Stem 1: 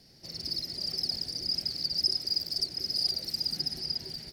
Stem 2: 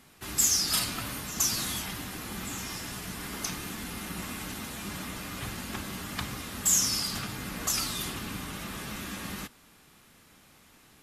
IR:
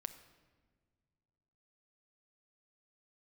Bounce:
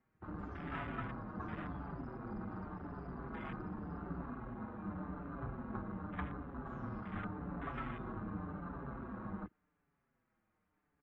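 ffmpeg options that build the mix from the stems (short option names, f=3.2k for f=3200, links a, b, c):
-filter_complex "[0:a]volume=-7dB[a];[1:a]asplit=2[b][c];[c]adelay=5.8,afreqshift=-0.87[d];[b][d]amix=inputs=2:normalize=1,volume=-2.5dB,asplit=2[e][f];[f]volume=-12dB[g];[2:a]atrim=start_sample=2205[h];[g][h]afir=irnorm=-1:irlink=0[i];[a][e][i]amix=inputs=3:normalize=0,lowpass=f=1.9k:w=0.5412,lowpass=f=1.9k:w=1.3066,afwtdn=0.00562"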